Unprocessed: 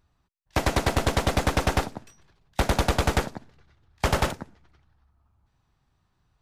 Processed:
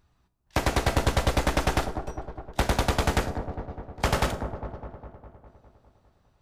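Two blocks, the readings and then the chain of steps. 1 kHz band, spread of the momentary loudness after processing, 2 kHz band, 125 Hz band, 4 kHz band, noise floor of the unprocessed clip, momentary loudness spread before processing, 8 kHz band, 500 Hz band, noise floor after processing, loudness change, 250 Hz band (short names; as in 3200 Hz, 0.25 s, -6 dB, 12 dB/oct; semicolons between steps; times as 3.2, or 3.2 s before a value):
-0.5 dB, 14 LU, -1.0 dB, -0.5 dB, -1.0 dB, -72 dBFS, 14 LU, -1.0 dB, -0.5 dB, -68 dBFS, -1.5 dB, -1.0 dB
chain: dark delay 0.203 s, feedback 63%, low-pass 910 Hz, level -10 dB; in parallel at +1 dB: compressor, threshold -29 dBFS, peak gain reduction 12 dB; on the sum: resonator 61 Hz, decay 0.46 s, harmonics all, mix 50%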